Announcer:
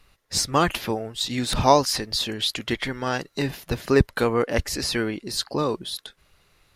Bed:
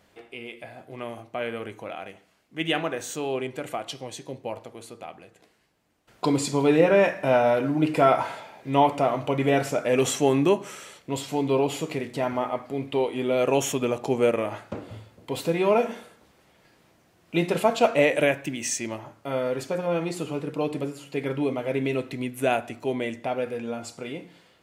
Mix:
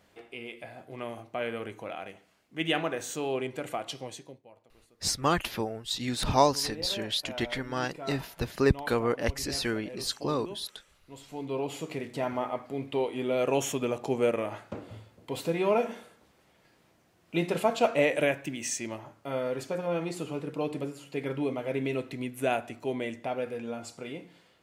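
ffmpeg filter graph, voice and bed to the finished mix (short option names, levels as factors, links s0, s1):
-filter_complex "[0:a]adelay=4700,volume=0.531[s0];[1:a]volume=5.31,afade=t=out:st=4.04:d=0.38:silence=0.112202,afade=t=in:st=11.06:d=1.07:silence=0.141254[s1];[s0][s1]amix=inputs=2:normalize=0"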